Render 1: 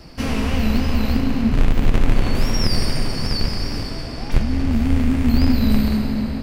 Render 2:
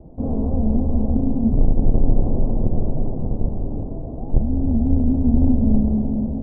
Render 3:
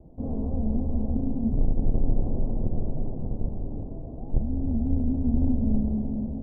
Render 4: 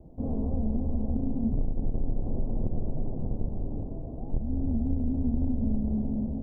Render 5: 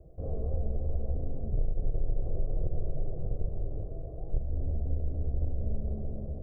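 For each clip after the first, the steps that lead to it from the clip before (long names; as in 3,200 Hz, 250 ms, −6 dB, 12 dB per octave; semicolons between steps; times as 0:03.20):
Butterworth low-pass 760 Hz 36 dB per octave
high-frequency loss of the air 460 metres; level −7 dB
downward compressor, threshold −22 dBFS, peak gain reduction 7 dB
phaser with its sweep stopped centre 910 Hz, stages 6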